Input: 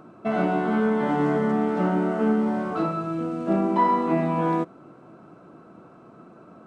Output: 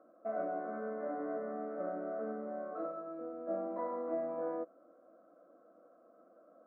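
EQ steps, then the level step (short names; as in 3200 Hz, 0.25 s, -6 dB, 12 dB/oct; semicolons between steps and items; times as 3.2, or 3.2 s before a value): ladder band-pass 580 Hz, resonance 45%; fixed phaser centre 600 Hz, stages 8; +1.0 dB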